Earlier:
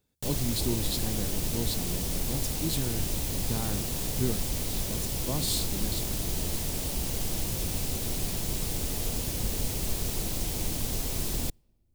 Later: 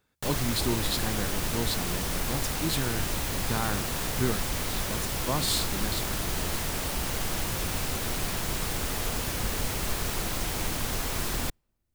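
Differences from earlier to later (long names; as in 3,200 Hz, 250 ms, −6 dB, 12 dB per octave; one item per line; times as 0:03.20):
background: send −10.0 dB
master: add parametric band 1,400 Hz +13.5 dB 1.8 octaves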